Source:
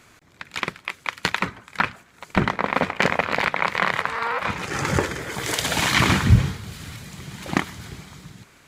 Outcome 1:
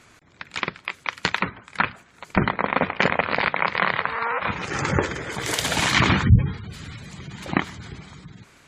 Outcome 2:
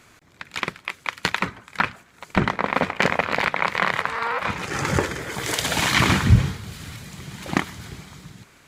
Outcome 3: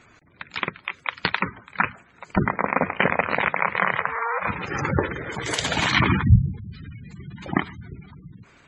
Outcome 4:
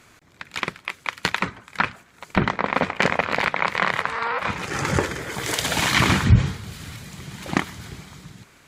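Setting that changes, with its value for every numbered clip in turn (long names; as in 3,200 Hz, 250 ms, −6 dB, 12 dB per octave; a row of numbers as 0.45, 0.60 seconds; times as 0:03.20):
gate on every frequency bin, under each frame's peak: −25, −60, −15, −45 decibels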